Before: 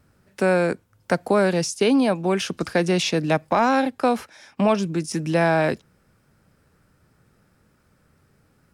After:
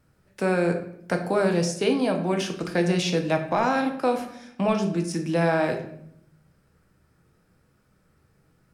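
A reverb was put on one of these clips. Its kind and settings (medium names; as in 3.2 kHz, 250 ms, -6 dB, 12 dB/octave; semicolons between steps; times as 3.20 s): simulated room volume 160 m³, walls mixed, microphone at 0.62 m; trim -5 dB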